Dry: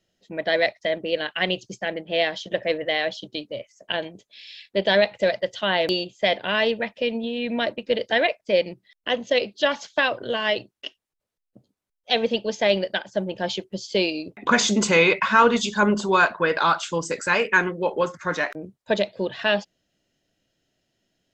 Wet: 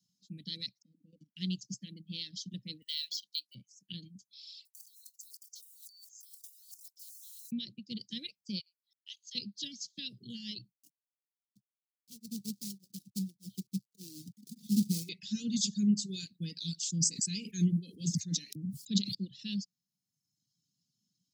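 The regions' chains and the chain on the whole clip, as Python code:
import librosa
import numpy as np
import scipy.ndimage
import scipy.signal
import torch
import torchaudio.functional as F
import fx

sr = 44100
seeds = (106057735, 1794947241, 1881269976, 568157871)

y = fx.chain(x, sr, fx.lower_of_two(delay_ms=0.4),
    fx.double_bandpass(hz=380.0, octaves=0.87),
    fx.level_steps(step_db=13), at=(0.82, 1.37))
y = fx.chain(y, sr, fx.highpass(hz=1500.0, slope=12),
    fx.high_shelf(hz=2000.0, db=7.5),
    fx.resample_linear(factor=2), at=(2.82, 3.55))
y = fx.chain(y, sr, fx.block_float(bits=5),
    fx.cheby2_bandstop(low_hz=130.0, high_hz=1500.0, order=4, stop_db=70),
    fx.over_compress(threshold_db=-51.0, ratio=-1.0), at=(4.65, 7.52))
y = fx.chain(y, sr, fx.ladder_highpass(hz=1900.0, resonance_pct=45),
    fx.high_shelf(hz=4400.0, db=6.0), at=(8.59, 9.35))
y = fx.chain(y, sr, fx.bessel_lowpass(hz=720.0, order=2),
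    fx.quant_companded(bits=4),
    fx.tremolo_abs(hz=1.7), at=(10.73, 15.09))
y = fx.chain(y, sr, fx.peak_eq(hz=600.0, db=-4.0, octaves=0.36),
    fx.sustainer(db_per_s=40.0), at=(16.76, 19.15))
y = scipy.signal.sosfilt(scipy.signal.ellip(3, 1.0, 70, [190.0, 4600.0], 'bandstop', fs=sr, output='sos'), y)
y = fx.dereverb_blind(y, sr, rt60_s=0.99)
y = scipy.signal.sosfilt(scipy.signal.butter(4, 130.0, 'highpass', fs=sr, output='sos'), y)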